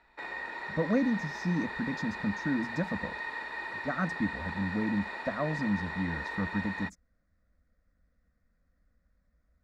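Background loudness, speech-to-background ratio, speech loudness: -37.5 LUFS, 4.0 dB, -33.5 LUFS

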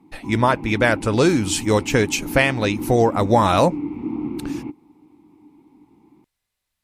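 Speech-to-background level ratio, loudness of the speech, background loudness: 11.0 dB, -19.0 LUFS, -30.0 LUFS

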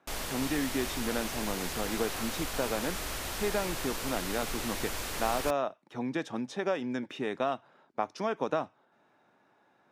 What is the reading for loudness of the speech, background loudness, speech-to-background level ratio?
-34.5 LUFS, -35.5 LUFS, 1.0 dB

